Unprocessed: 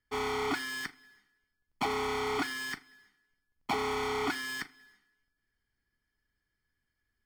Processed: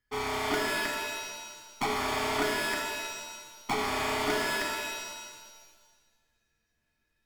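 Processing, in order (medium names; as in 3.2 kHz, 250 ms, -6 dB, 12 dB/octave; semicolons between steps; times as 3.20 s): tracing distortion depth 0.088 ms; pitch-shifted reverb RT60 1.5 s, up +7 st, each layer -2 dB, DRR 1 dB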